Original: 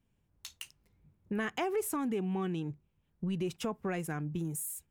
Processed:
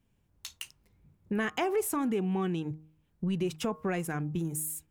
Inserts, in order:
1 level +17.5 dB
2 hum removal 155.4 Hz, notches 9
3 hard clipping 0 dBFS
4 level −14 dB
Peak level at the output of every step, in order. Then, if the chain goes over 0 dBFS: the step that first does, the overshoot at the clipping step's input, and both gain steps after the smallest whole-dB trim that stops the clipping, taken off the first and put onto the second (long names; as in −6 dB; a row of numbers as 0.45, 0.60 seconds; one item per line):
−5.0, −5.0, −5.0, −19.0 dBFS
no step passes full scale